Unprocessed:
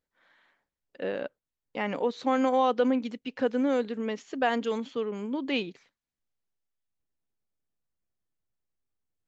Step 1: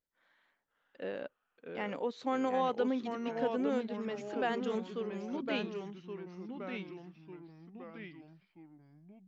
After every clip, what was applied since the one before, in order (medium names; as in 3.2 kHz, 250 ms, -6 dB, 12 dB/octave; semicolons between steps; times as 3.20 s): ever faster or slower copies 516 ms, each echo -2 st, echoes 3, each echo -6 dB; trim -7.5 dB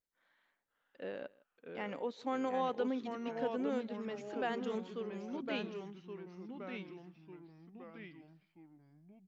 delay 159 ms -23.5 dB; trim -3.5 dB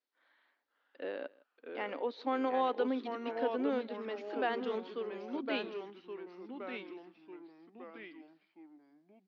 elliptic band-pass 270–4600 Hz, stop band 40 dB; trim +4 dB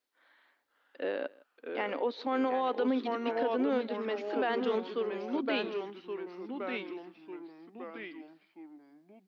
peak limiter -27.5 dBFS, peak gain reduction 7.5 dB; trim +6 dB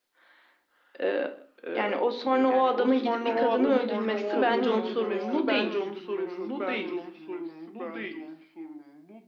simulated room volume 250 m³, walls furnished, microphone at 0.92 m; trim +5.5 dB